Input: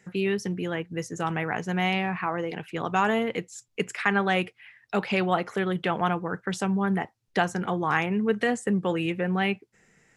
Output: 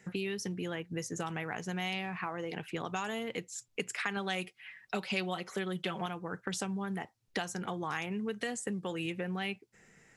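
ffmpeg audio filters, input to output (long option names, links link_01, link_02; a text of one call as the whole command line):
ffmpeg -i in.wav -filter_complex "[0:a]asettb=1/sr,asplit=3[link_01][link_02][link_03];[link_01]atrim=end=4.164[link_04];[link_02]atrim=start=4.16:end=6.06,asetpts=PTS-STARTPTS,afade=type=in:duration=0.004:curve=qsin,afade=type=out:start_time=1.896:duration=0.004:curve=qsin,aecho=1:1:5.3:0.76,atrim=end_sample=83790[link_05];[link_03]atrim=start=6.056[link_06];[link_04][link_05]acrossfade=duration=0.004:curve1=hsin:curve2=qsin[link_07];[link_07][link_06]acrossfade=duration=0.004:curve1=qsin:curve2=hsin,acrossover=split=3500[link_08][link_09];[link_08]acompressor=threshold=-34dB:ratio=6[link_10];[link_10][link_09]amix=inputs=2:normalize=0" out.wav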